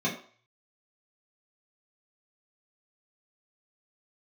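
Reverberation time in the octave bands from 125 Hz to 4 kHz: 0.60 s, 0.35 s, 0.45 s, 0.50 s, 0.50 s, 0.45 s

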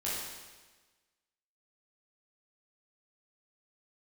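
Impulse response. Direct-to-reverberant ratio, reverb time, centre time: -8.5 dB, 1.3 s, 94 ms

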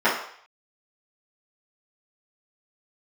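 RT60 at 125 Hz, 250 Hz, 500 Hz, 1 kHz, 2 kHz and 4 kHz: 0.40 s, 0.40 s, 0.55 s, 0.65 s, 0.65 s, 0.65 s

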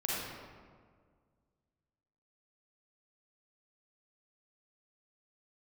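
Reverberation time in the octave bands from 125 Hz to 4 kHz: 2.4 s, 2.1 s, 1.9 s, 1.7 s, 1.3 s, 0.95 s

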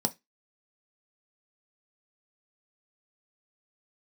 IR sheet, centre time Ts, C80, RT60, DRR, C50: 4 ms, 33.0 dB, 0.15 s, 6.0 dB, 22.5 dB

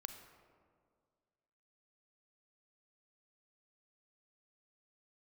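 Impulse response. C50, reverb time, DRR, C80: 7.5 dB, 2.0 s, 7.0 dB, 9.0 dB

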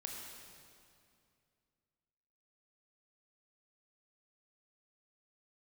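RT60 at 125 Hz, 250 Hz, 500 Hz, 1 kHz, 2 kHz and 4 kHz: 2.9 s, 2.7 s, 2.5 s, 2.3 s, 2.2 s, 2.0 s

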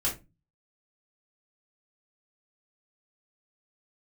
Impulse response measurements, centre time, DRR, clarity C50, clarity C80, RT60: 22 ms, -6.0 dB, 10.0 dB, 17.5 dB, 0.25 s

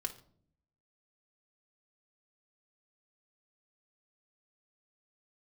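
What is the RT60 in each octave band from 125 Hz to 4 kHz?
1.0 s, 1.0 s, 0.65 s, 0.50 s, 0.40 s, 0.40 s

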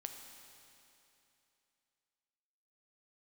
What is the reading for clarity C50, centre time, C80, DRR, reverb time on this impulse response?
5.0 dB, 64 ms, 6.0 dB, 4.0 dB, 2.9 s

